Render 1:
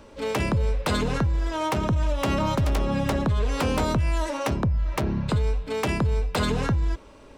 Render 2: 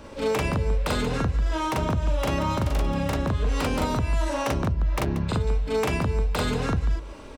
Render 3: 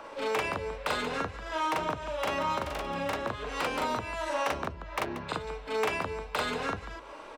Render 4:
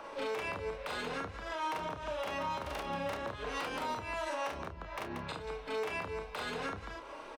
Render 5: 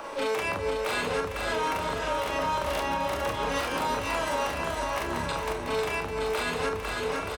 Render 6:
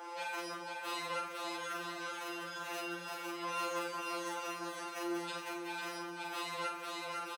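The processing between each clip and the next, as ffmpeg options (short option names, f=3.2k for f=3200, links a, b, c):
-af "acompressor=threshold=-31dB:ratio=3,aecho=1:1:40.82|183.7:1|0.282,volume=3.5dB"
-filter_complex "[0:a]bass=f=250:g=-15,treble=f=4k:g=-7,acrossover=split=760|1100[a][b][c];[a]flanger=delay=5.7:depth=7.9:regen=43:speed=0.55:shape=triangular[d];[b]acompressor=mode=upward:threshold=-41dB:ratio=2.5[e];[d][e][c]amix=inputs=3:normalize=0"
-filter_complex "[0:a]bandreject=f=7.4k:w=20,alimiter=level_in=2.5dB:limit=-24dB:level=0:latency=1:release=150,volume=-2.5dB,asplit=2[a][b];[b]adelay=30,volume=-9dB[c];[a][c]amix=inputs=2:normalize=0,volume=-2dB"
-filter_complex "[0:a]aecho=1:1:500|925|1286|1593|1854:0.631|0.398|0.251|0.158|0.1,acrossover=split=7000[a][b];[b]aeval=exprs='0.00501*sin(PI/2*1.58*val(0)/0.00501)':c=same[c];[a][c]amix=inputs=2:normalize=0,alimiter=level_in=2.5dB:limit=-24dB:level=0:latency=1:release=331,volume=-2.5dB,volume=8dB"
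-filter_complex "[0:a]highpass=f=240:w=0.5412,highpass=f=240:w=1.3066,asplit=2[a][b];[b]adelay=50,volume=-8dB[c];[a][c]amix=inputs=2:normalize=0,afftfilt=real='re*2.83*eq(mod(b,8),0)':imag='im*2.83*eq(mod(b,8),0)':win_size=2048:overlap=0.75,volume=-6dB"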